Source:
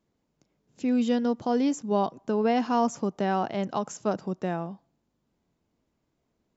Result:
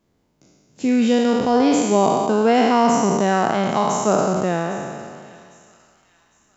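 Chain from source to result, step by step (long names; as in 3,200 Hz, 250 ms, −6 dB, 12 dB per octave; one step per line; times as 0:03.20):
peak hold with a decay on every bin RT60 2.05 s
delay with a high-pass on its return 806 ms, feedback 40%, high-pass 1,900 Hz, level −17 dB
level +6.5 dB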